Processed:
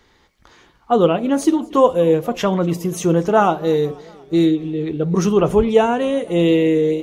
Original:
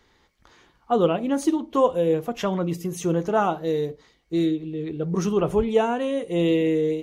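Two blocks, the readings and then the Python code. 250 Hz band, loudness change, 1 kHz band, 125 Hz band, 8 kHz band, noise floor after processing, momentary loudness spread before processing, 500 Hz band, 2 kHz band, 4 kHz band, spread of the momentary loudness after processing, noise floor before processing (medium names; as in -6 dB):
+6.5 dB, +6.5 dB, +6.5 dB, +6.5 dB, +6.5 dB, -56 dBFS, 7 LU, +6.5 dB, +6.5 dB, +6.5 dB, 6 LU, -63 dBFS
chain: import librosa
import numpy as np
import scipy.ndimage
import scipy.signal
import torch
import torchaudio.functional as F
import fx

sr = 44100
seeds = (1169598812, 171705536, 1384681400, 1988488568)

p1 = fx.rider(x, sr, range_db=10, speed_s=2.0)
p2 = x + F.gain(torch.from_numpy(p1), -2.5).numpy()
p3 = fx.echo_warbled(p2, sr, ms=239, feedback_pct=62, rate_hz=2.8, cents=207, wet_db=-24.0)
y = F.gain(torch.from_numpy(p3), 1.5).numpy()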